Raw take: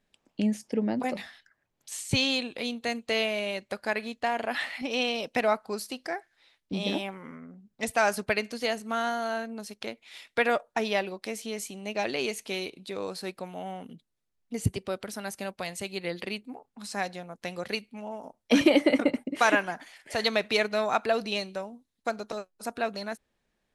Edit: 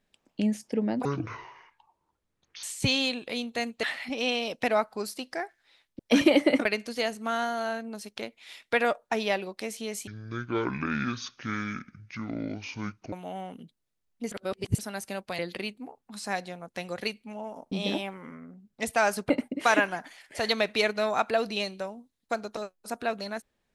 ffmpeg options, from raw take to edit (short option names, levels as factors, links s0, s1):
-filter_complex "[0:a]asplit=13[s0][s1][s2][s3][s4][s5][s6][s7][s8][s9][s10][s11][s12];[s0]atrim=end=1.054[s13];[s1]atrim=start=1.05:end=1.92,asetpts=PTS-STARTPTS,asetrate=24255,aresample=44100,atrim=end_sample=69758,asetpts=PTS-STARTPTS[s14];[s2]atrim=start=1.916:end=3.122[s15];[s3]atrim=start=4.558:end=6.722[s16];[s4]atrim=start=18.388:end=19.052[s17];[s5]atrim=start=8.298:end=11.724[s18];[s6]atrim=start=11.72:end=13.43,asetpts=PTS-STARTPTS,asetrate=24696,aresample=44100,atrim=end_sample=134662,asetpts=PTS-STARTPTS[s19];[s7]atrim=start=13.426:end=14.622[s20];[s8]atrim=start=14.618:end=15.092,asetpts=PTS-STARTPTS,areverse[s21];[s9]atrim=start=15.088:end=15.692[s22];[s10]atrim=start=16.058:end=18.392[s23];[s11]atrim=start=6.718:end=8.302[s24];[s12]atrim=start=19.048[s25];[s13][s14]acrossfade=d=0.004:c1=hsin:c2=hsin[s26];[s26][s15]acrossfade=d=0.004:c1=hsin:c2=hsin[s27];[s27][s16]acrossfade=d=0.004:c1=hsin:c2=hsin[s28];[s28][s17]acrossfade=d=0.004:c1=hsin:c2=hsin[s29];[s29][s18]acrossfade=d=0.004:c1=hsin:c2=hsin[s30];[s30][s19]acrossfade=d=0.004:c1=hsin:c2=hsin[s31];[s31][s20]acrossfade=d=0.004:c1=hsin:c2=hsin[s32];[s32][s21]acrossfade=d=0.004:c1=hsin:c2=hsin[s33];[s33][s22]acrossfade=d=0.004:c1=hsin:c2=hsin[s34];[s34][s23]acrossfade=d=0.004:c1=hsin:c2=hsin[s35];[s35][s24]acrossfade=d=0.004:c1=hsin:c2=hsin[s36];[s36][s25]acrossfade=d=0.004:c1=hsin:c2=hsin"